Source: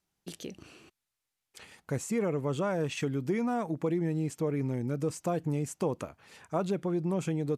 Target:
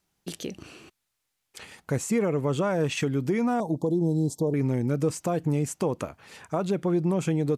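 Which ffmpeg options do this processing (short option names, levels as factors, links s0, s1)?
-filter_complex "[0:a]alimiter=limit=0.075:level=0:latency=1:release=216,asettb=1/sr,asplit=3[s0][s1][s2];[s0]atrim=end=3.604[s3];[s1]atrim=start=3.6:end=4.54,asetpts=PTS-STARTPTS,afade=t=in:d=0.004:c=qsin,afade=t=out:st=0.936:d=0.004:c=qsin,asuperstop=centerf=1900:order=12:qfactor=0.73[s4];[s2]atrim=start=4.536[s5];[s3][s4]acrossfade=d=0.004:c1=hsin:c2=qsin[s6];[s6][s5]acrossfade=d=0.004:c1=qsin:c2=hsin,volume=2.11"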